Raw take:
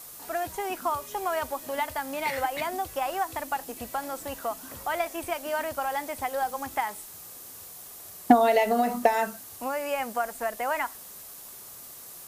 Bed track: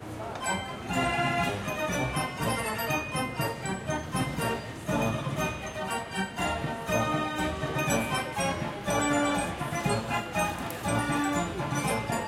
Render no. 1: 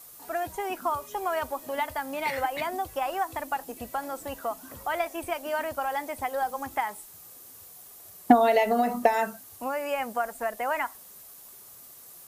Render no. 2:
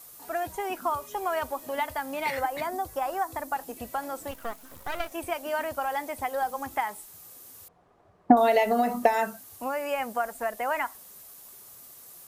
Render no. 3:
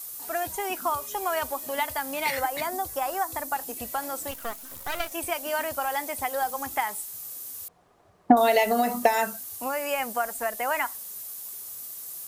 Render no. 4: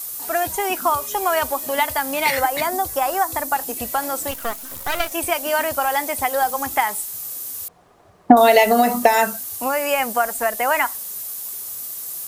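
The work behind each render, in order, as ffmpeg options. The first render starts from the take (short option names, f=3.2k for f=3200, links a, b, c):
-af "afftdn=nr=6:nf=-45"
-filter_complex "[0:a]asettb=1/sr,asplit=3[a][b][c];[a]atrim=end=2.394[d];[b]atrim=start=2.39:end=3.56,asetpts=PTS-STARTPTS,afade=t=in:d=0.004:c=qsin,afade=t=out:st=1.166:d=0.004:c=qsin,equalizer=f=2.8k:w=2.1:g=-8[e];[c]atrim=start=3.556[f];[d][e]acrossfade=d=0.004:c1=hsin:c2=qsin[g];[g][f]acrossfade=d=0.004:c1=qsin:c2=hsin,asettb=1/sr,asplit=3[h][i][j];[h]atrim=end=4.314[k];[i]atrim=start=4.31:end=5.12,asetpts=PTS-STARTPTS,afade=t=in:d=0.004:c=qsin,afade=t=out:st=0.806:d=0.004:c=qsin,aeval=exprs='max(val(0),0)':c=same[l];[j]atrim=start=5.116[m];[k][l]acrossfade=d=0.004:c1=hsin:c2=qsin[n];[n][m]acrossfade=d=0.004:c1=qsin:c2=hsin,asettb=1/sr,asplit=3[o][p][q];[o]atrim=end=7.684[r];[p]atrim=start=7.68:end=8.37,asetpts=PTS-STARTPTS,afade=t=in:d=0.004:c=qsin,afade=t=out:st=0.686:d=0.004:c=qsin,lowpass=1.2k[s];[q]atrim=start=8.366[t];[r][s]acrossfade=d=0.004:c1=hsin:c2=qsin[u];[u][t]acrossfade=d=0.004:c1=qsin:c2=hsin"
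-af "highshelf=f=3.1k:g=10.5"
-af "volume=8dB,alimiter=limit=-1dB:level=0:latency=1"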